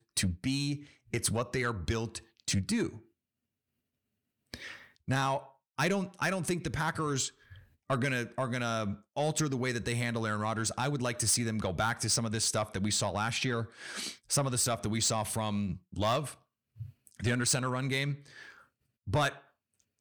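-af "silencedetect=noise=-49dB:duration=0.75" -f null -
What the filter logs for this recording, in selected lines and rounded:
silence_start: 3.00
silence_end: 4.54 | silence_duration: 1.54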